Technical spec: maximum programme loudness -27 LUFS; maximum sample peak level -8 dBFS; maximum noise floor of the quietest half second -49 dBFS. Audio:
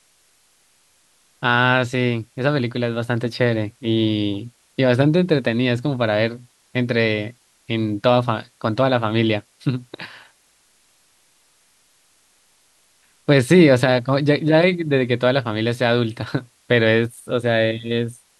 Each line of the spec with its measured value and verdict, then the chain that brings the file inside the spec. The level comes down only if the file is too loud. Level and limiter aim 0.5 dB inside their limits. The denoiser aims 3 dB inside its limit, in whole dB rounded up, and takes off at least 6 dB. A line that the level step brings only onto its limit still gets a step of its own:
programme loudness -19.5 LUFS: fail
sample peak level -2.5 dBFS: fail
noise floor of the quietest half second -59 dBFS: pass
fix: trim -8 dB

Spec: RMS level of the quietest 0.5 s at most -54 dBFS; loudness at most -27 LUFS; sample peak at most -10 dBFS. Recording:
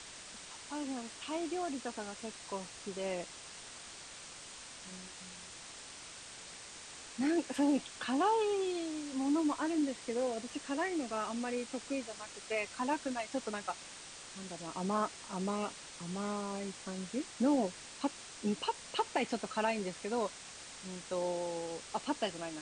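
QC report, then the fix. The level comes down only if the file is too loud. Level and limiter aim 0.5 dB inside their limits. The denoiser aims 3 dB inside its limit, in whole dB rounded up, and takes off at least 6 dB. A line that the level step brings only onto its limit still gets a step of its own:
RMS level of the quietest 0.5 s -50 dBFS: fail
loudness -37.5 LUFS: pass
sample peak -20.0 dBFS: pass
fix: noise reduction 7 dB, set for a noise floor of -50 dBFS

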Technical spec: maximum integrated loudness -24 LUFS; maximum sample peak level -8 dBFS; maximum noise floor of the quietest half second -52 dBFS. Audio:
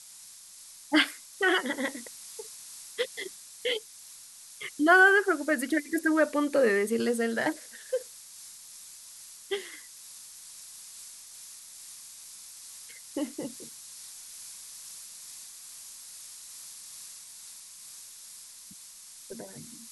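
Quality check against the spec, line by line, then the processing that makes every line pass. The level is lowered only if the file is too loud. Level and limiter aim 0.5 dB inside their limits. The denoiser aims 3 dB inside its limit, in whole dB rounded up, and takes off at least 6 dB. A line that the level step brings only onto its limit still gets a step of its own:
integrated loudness -27.5 LUFS: pass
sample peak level -9.0 dBFS: pass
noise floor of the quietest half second -50 dBFS: fail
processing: noise reduction 6 dB, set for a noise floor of -50 dBFS

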